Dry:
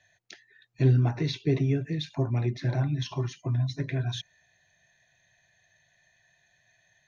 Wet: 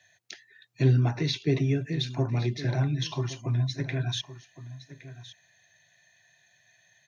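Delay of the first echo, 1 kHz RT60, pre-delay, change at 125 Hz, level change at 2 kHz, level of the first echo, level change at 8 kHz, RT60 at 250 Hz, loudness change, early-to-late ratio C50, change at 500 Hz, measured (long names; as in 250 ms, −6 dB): 1,115 ms, no reverb audible, no reverb audible, 0.0 dB, +3.0 dB, −15.5 dB, can't be measured, no reverb audible, +0.5 dB, no reverb audible, +0.5 dB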